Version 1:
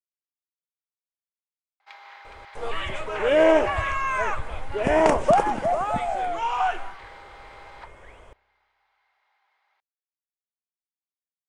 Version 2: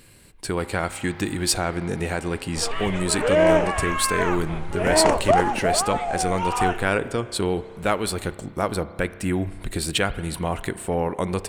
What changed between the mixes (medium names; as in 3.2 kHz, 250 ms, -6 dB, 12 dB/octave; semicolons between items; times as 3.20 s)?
speech: unmuted; first sound: entry -1.30 s